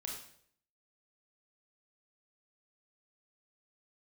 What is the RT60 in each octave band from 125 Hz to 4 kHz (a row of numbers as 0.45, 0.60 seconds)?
0.70, 0.65, 0.70, 0.55, 0.55, 0.55 seconds